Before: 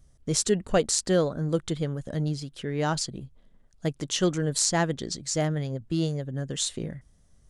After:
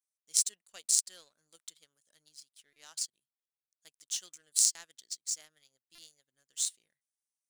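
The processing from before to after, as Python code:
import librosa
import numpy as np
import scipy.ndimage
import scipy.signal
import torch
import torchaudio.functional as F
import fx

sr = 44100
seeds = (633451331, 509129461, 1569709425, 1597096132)

y = np.diff(x, prepend=0.0)
y = fx.power_curve(y, sr, exponent=1.4)
y = fx.high_shelf(y, sr, hz=2000.0, db=10.5)
y = fx.buffer_glitch(y, sr, at_s=(2.73, 4.72, 5.95), block=128, repeats=10)
y = y * librosa.db_to_amplitude(-4.0)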